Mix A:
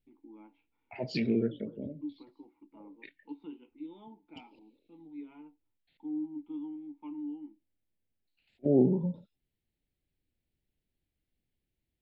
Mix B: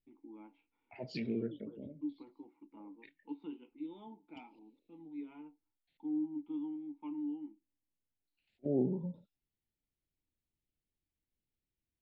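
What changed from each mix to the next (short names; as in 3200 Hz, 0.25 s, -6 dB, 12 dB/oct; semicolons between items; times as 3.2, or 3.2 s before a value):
second voice -8.0 dB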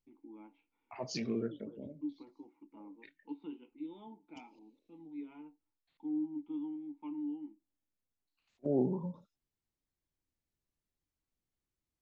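second voice: remove fixed phaser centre 2700 Hz, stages 4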